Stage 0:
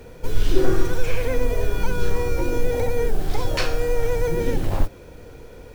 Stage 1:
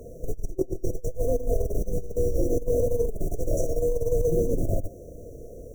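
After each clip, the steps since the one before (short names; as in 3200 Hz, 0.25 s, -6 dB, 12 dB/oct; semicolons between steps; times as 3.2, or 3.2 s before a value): FFT band-reject 700–5600 Hz; bell 970 Hz +9.5 dB 0.95 oct; negative-ratio compressor -19 dBFS, ratio -0.5; gain -4 dB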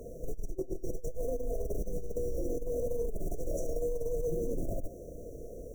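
limiter -22.5 dBFS, peak gain reduction 10.5 dB; bell 97 Hz -7.5 dB 0.54 oct; gain -2 dB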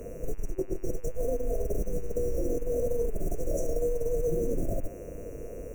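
buzz 100 Hz, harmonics 28, -66 dBFS -2 dB/oct; gain +4.5 dB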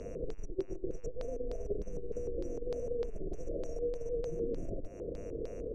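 compressor, threshold -32 dBFS, peak gain reduction 8.5 dB; LFO low-pass square 3.3 Hz 420–4700 Hz; gain -2.5 dB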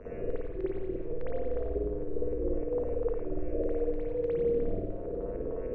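LFO low-pass sine 3.6 Hz 910–2200 Hz; thin delay 89 ms, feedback 70%, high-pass 2300 Hz, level -4 dB; spring tank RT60 1 s, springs 53 ms, chirp 25 ms, DRR -9 dB; gain -5 dB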